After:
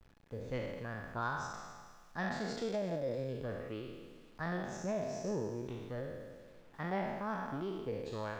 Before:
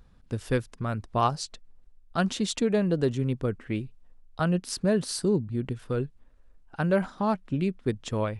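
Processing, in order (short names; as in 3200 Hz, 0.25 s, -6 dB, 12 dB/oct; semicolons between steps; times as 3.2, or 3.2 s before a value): spectral trails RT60 1.60 s; formant shift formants +4 st; steep low-pass 7600 Hz 48 dB/oct; bit-crush 8-bit; high shelf 4800 Hz -11.5 dB; resonator 840 Hz, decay 0.39 s, mix 70%; gain -4 dB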